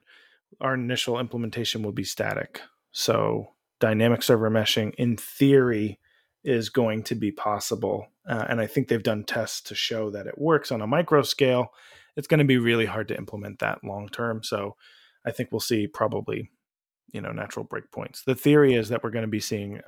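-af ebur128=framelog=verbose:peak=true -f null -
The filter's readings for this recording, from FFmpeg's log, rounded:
Integrated loudness:
  I:         -25.3 LUFS
  Threshold: -35.7 LUFS
Loudness range:
  LRA:         7.1 LU
  Threshold: -45.7 LUFS
  LRA low:   -30.2 LUFS
  LRA high:  -23.1 LUFS
True peak:
  Peak:       -6.7 dBFS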